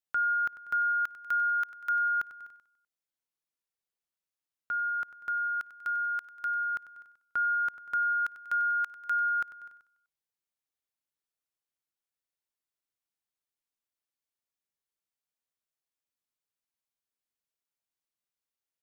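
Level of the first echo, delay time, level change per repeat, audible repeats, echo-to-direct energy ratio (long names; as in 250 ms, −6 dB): −15.0 dB, 96 ms, −4.5 dB, 4, −13.0 dB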